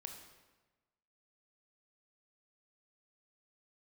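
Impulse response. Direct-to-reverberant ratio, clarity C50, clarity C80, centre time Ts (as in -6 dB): 3.5 dB, 5.5 dB, 7.5 dB, 33 ms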